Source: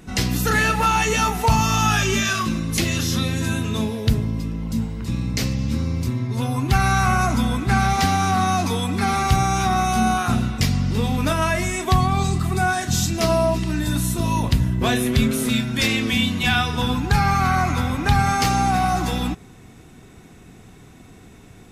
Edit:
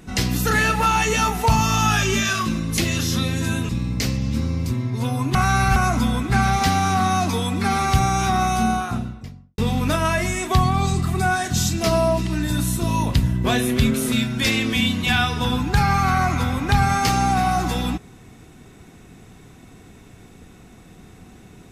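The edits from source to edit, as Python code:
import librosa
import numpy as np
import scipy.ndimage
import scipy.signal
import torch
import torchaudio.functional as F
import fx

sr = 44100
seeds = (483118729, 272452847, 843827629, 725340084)

y = fx.studio_fade_out(x, sr, start_s=9.8, length_s=1.15)
y = fx.edit(y, sr, fx.cut(start_s=3.69, length_s=1.37),
    fx.reverse_span(start_s=6.72, length_s=0.41), tone=tone)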